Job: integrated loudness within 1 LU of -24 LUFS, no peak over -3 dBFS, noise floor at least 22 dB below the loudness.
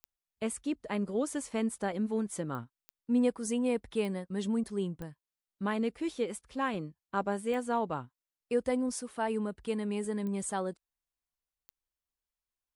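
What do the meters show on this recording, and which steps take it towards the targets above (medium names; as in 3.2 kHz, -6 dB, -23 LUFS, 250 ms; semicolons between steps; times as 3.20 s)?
clicks found 8; loudness -33.5 LUFS; peak level -17.5 dBFS; loudness target -24.0 LUFS
-> de-click; trim +9.5 dB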